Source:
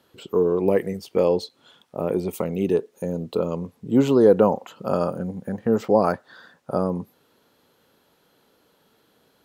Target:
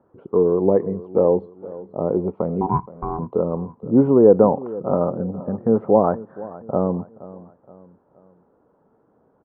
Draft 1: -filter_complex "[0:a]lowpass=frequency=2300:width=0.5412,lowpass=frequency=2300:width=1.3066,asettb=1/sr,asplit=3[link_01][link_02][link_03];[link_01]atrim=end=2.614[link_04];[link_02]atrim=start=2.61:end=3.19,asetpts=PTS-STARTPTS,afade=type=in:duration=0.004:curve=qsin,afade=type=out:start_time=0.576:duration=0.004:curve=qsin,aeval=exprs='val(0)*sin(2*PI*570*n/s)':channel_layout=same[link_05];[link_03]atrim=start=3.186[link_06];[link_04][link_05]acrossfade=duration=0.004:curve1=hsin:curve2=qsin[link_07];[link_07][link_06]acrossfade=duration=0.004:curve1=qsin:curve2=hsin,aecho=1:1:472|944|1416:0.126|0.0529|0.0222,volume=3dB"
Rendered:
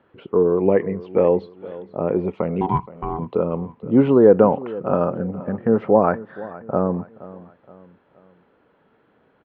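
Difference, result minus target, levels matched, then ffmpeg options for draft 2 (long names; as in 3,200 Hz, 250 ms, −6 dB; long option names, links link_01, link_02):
2,000 Hz band +12.5 dB
-filter_complex "[0:a]lowpass=frequency=1100:width=0.5412,lowpass=frequency=1100:width=1.3066,asettb=1/sr,asplit=3[link_01][link_02][link_03];[link_01]atrim=end=2.614[link_04];[link_02]atrim=start=2.61:end=3.19,asetpts=PTS-STARTPTS,afade=type=in:duration=0.004:curve=qsin,afade=type=out:start_time=0.576:duration=0.004:curve=qsin,aeval=exprs='val(0)*sin(2*PI*570*n/s)':channel_layout=same[link_05];[link_03]atrim=start=3.186[link_06];[link_04][link_05]acrossfade=duration=0.004:curve1=hsin:curve2=qsin[link_07];[link_07][link_06]acrossfade=duration=0.004:curve1=qsin:curve2=hsin,aecho=1:1:472|944|1416:0.126|0.0529|0.0222,volume=3dB"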